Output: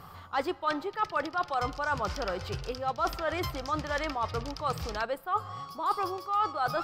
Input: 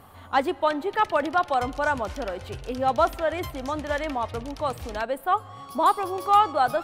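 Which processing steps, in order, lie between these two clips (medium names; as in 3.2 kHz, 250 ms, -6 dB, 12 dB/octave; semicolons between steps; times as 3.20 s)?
graphic EQ with 31 bands 160 Hz +10 dB, 250 Hz -10 dB, 630 Hz -4 dB, 1.25 kHz +7 dB, 5 kHz +11 dB, 10 kHz -8 dB; reverse; compression 5:1, threshold -27 dBFS, peak gain reduction 16 dB; reverse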